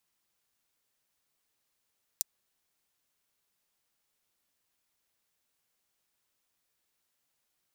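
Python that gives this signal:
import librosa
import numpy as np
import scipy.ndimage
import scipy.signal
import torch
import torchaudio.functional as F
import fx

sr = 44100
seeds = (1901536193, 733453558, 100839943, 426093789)

y = fx.drum_hat(sr, length_s=0.24, from_hz=5700.0, decay_s=0.02)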